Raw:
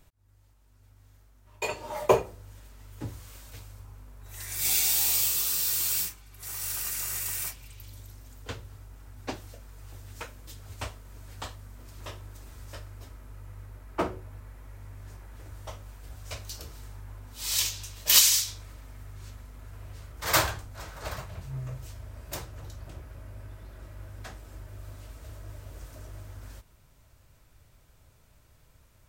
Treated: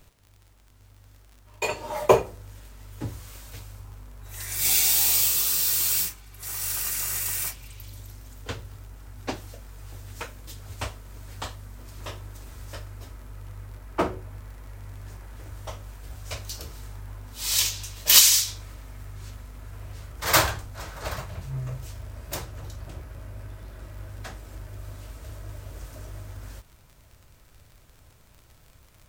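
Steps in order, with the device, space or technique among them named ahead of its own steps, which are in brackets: vinyl LP (crackle 51/s -45 dBFS; pink noise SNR 37 dB); gain +4 dB

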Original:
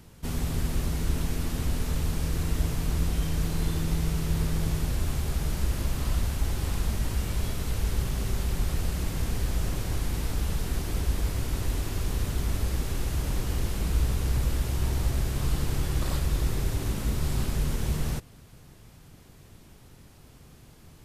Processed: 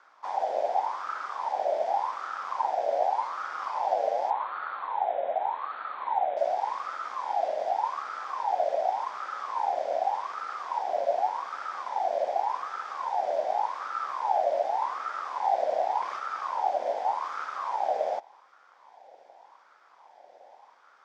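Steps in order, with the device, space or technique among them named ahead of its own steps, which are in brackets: 4.3–6.37 Chebyshev low-pass 3200 Hz, order 10; voice changer toy (ring modulator with a swept carrier 950 Hz, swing 35%, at 0.86 Hz; speaker cabinet 510–4800 Hz, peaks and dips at 550 Hz +4 dB, 790 Hz +5 dB, 1200 Hz -9 dB, 2800 Hz -8 dB, 4100 Hz -8 dB)

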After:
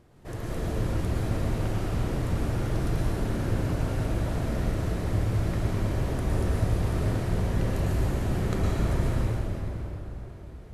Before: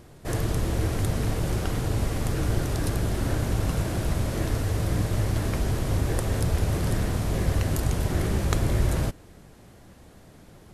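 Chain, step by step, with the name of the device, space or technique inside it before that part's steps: swimming-pool hall (reverb RT60 3.8 s, pre-delay 0.105 s, DRR -6 dB; high shelf 3900 Hz -7.5 dB); gain -8.5 dB

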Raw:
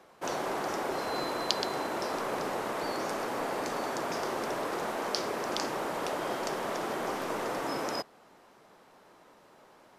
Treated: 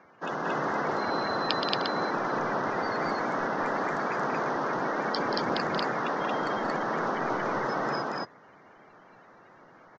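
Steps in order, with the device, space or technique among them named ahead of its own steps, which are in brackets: clip after many re-uploads (LPF 4500 Hz 24 dB/oct; bin magnitudes rounded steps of 30 dB); 5.14–5.57 low shelf 190 Hz +9.5 dB; loudspeakers at several distances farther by 62 m -9 dB, 78 m 0 dB; gain +1.5 dB

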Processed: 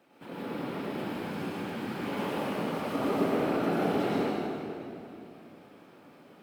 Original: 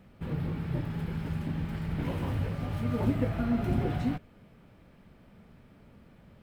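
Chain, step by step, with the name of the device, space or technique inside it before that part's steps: bell 1900 Hz -4 dB 0.4 oct; whispering ghost (whisperiser; HPF 430 Hz 12 dB/oct; reverb RT60 2.8 s, pre-delay 92 ms, DRR -7 dB)

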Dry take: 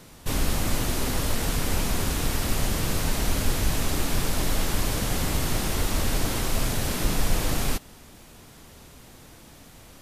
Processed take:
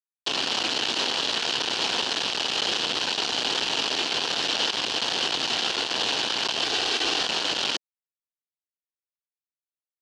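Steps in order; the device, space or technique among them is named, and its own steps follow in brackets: 6.63–7.21 comb 2.6 ms, depth 85%; hand-held game console (bit-crush 4-bit; speaker cabinet 460–5400 Hz, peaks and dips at 580 Hz -5 dB, 1200 Hz -5 dB, 2100 Hz -7 dB, 3000 Hz +9 dB, 4300 Hz +4 dB); gain +2 dB

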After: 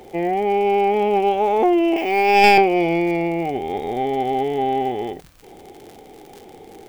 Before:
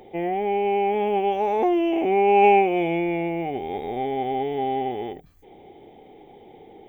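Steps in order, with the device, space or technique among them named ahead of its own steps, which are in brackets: 1.96–2.58 tilt +4.5 dB/oct; record under a worn stylus (tracing distortion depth 0.078 ms; crackle 70/s -35 dBFS; pink noise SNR 38 dB); gain +4.5 dB

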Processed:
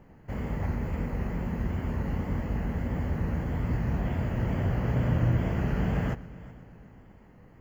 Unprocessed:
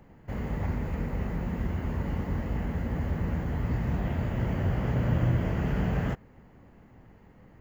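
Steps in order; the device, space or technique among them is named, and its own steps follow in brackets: notch 3700 Hz, Q 6.5; multi-head tape echo (multi-head echo 0.125 s, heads first and third, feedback 57%, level -21 dB; wow and flutter)

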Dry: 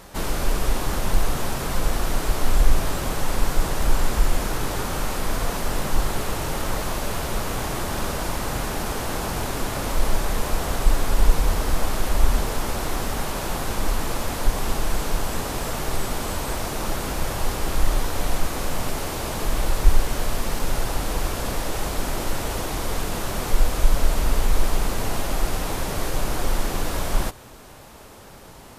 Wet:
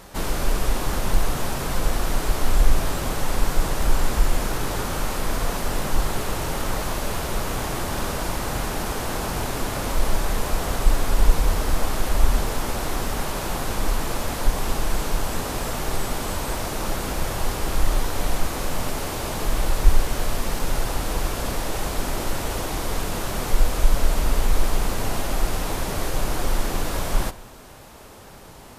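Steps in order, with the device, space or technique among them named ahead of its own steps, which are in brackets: saturated reverb return (on a send at -13.5 dB: reverb RT60 0.85 s, pre-delay 10 ms + soft clip -19 dBFS, distortion -7 dB)

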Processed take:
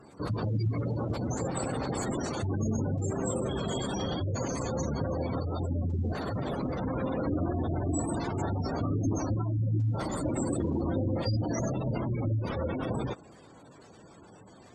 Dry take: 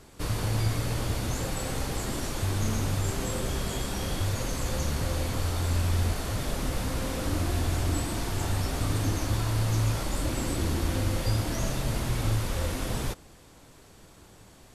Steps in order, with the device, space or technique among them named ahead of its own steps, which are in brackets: noise-suppressed video call (HPF 130 Hz 12 dB/oct; spectral gate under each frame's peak -15 dB strong; gain +3.5 dB; Opus 20 kbps 48000 Hz)

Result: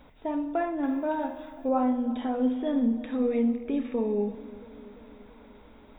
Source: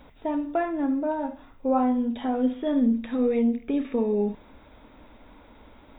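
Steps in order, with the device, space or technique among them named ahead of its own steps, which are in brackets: dub delay into a spring reverb (darkening echo 0.339 s, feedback 65%, level -18 dB; spring tank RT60 1.3 s, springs 55 ms, chirp 50 ms, DRR 12.5 dB); 0.83–1.69 high shelf 2000 Hz +12 dB; gain -3 dB

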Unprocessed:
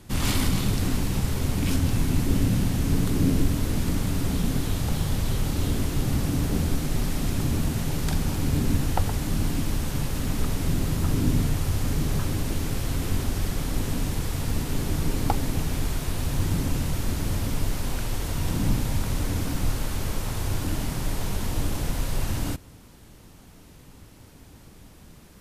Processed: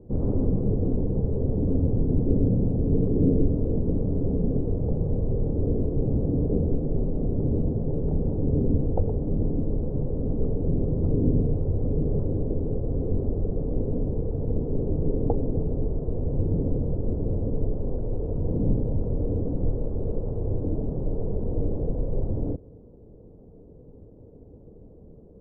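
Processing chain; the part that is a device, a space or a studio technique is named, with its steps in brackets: under water (LPF 600 Hz 24 dB/oct; bell 460 Hz +11 dB 0.55 oct)

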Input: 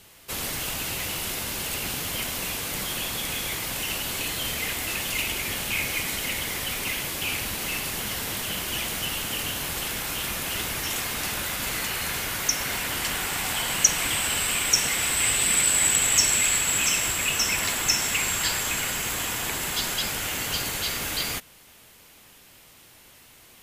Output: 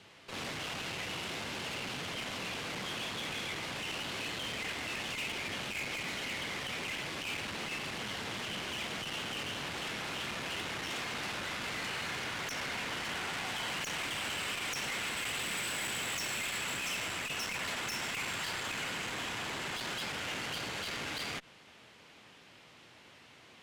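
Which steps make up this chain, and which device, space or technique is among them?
valve radio (BPF 110–4000 Hz; tube stage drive 33 dB, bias 0.4; core saturation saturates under 390 Hz)

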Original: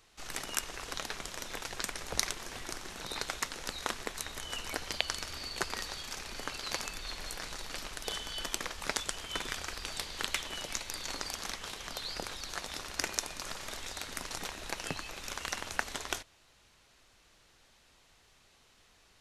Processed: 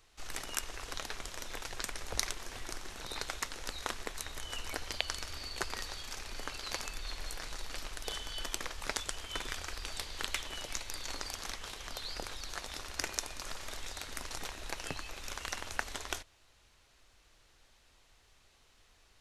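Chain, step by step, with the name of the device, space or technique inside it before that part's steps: low shelf boost with a cut just above (low shelf 75 Hz +8 dB; bell 180 Hz -4.5 dB 0.83 oct); gain -2.5 dB

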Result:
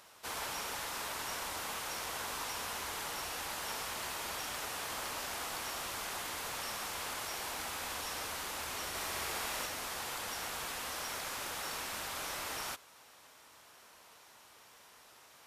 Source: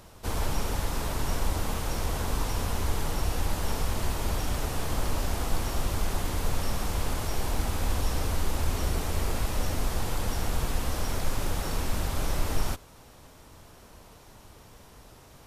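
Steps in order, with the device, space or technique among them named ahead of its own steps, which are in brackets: filter by subtraction (in parallel: LPF 1700 Hz 12 dB/oct + phase invert); 8.88–9.66 on the sum: flutter echo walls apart 11.3 m, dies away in 0.96 s; gain -3 dB

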